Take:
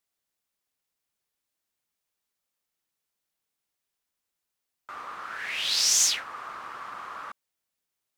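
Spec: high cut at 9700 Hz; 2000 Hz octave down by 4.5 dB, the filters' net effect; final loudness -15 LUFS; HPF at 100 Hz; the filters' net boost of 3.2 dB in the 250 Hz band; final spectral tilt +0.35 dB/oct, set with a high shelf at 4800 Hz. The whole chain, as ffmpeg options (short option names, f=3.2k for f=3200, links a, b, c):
-af "highpass=100,lowpass=9.7k,equalizer=f=250:t=o:g=4.5,equalizer=f=2k:t=o:g=-6.5,highshelf=f=4.8k:g=3,volume=7dB"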